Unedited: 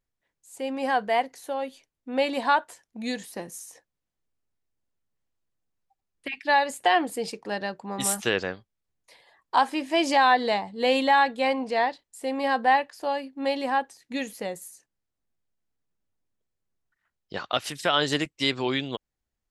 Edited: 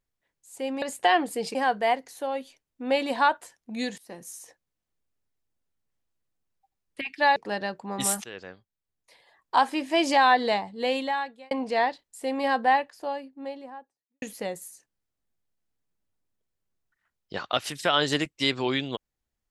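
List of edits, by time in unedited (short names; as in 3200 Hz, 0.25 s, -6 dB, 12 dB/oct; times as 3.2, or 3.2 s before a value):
3.25–3.64 fade in, from -16.5 dB
6.63–7.36 move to 0.82
8.24–9.59 fade in, from -20 dB
10.53–11.51 fade out
12.41–14.22 studio fade out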